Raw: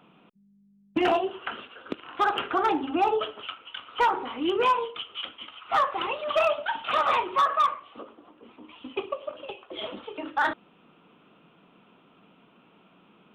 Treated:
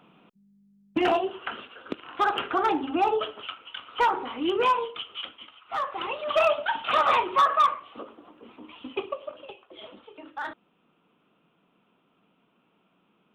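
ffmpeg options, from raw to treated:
ffmpeg -i in.wav -af "volume=11.5dB,afade=type=out:start_time=5.13:duration=0.52:silence=0.334965,afade=type=in:start_time=5.65:duration=0.85:silence=0.266073,afade=type=out:start_time=8.73:duration=1.03:silence=0.266073" out.wav

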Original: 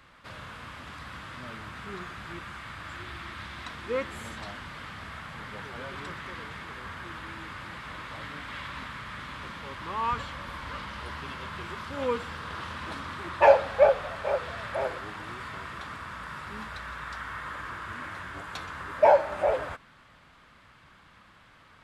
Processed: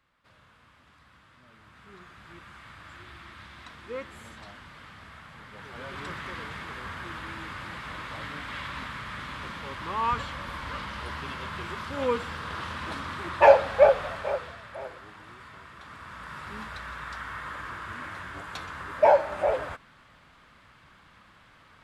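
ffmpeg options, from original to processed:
ffmpeg -i in.wav -af "volume=10.5dB,afade=type=in:start_time=1.47:duration=1.18:silence=0.334965,afade=type=in:start_time=5.52:duration=0.62:silence=0.375837,afade=type=out:start_time=14.07:duration=0.54:silence=0.298538,afade=type=in:start_time=15.76:duration=0.73:silence=0.375837" out.wav

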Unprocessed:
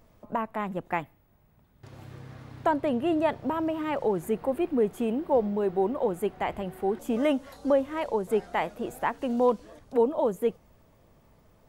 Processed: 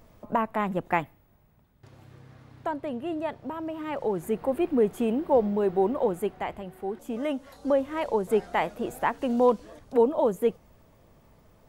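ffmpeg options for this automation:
ffmpeg -i in.wav -af "volume=19dB,afade=type=out:start_time=0.98:duration=1.01:silence=0.316228,afade=type=in:start_time=3.61:duration=1.08:silence=0.398107,afade=type=out:start_time=6.01:duration=0.6:silence=0.446684,afade=type=in:start_time=7.27:duration=0.88:silence=0.446684" out.wav

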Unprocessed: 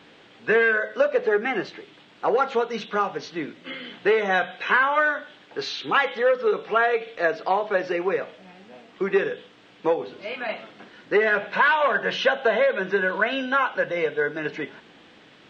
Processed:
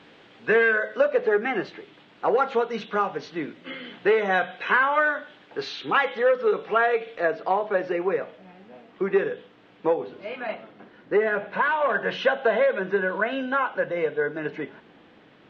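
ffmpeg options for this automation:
ffmpeg -i in.wav -af "asetnsamples=nb_out_samples=441:pad=0,asendcmd='0.97 lowpass f 3000;7.2 lowpass f 1600;10.55 lowpass f 1000;11.89 lowpass f 2000;12.79 lowpass f 1400',lowpass=frequency=4500:poles=1" out.wav

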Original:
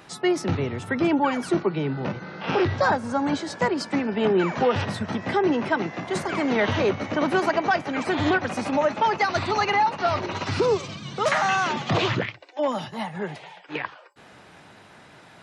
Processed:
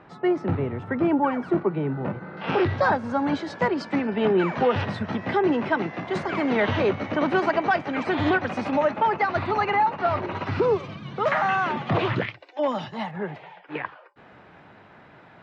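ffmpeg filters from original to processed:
ffmpeg -i in.wav -af "asetnsamples=nb_out_samples=441:pad=0,asendcmd='2.37 lowpass f 3500;8.91 lowpass f 2200;12.16 lowpass f 4200;13.11 lowpass f 2200',lowpass=1600" out.wav

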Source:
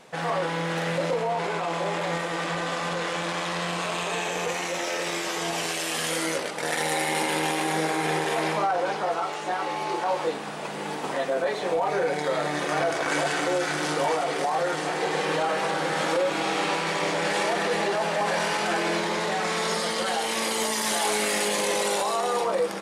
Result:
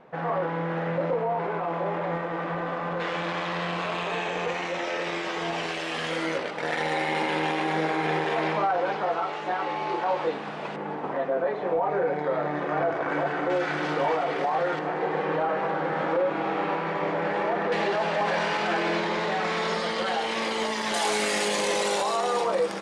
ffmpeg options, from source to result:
ffmpeg -i in.wav -af "asetnsamples=nb_out_samples=441:pad=0,asendcmd='3 lowpass f 3200;10.76 lowpass f 1500;13.5 lowpass f 2700;14.79 lowpass f 1600;17.72 lowpass f 3800;20.94 lowpass f 7500',lowpass=1500" out.wav

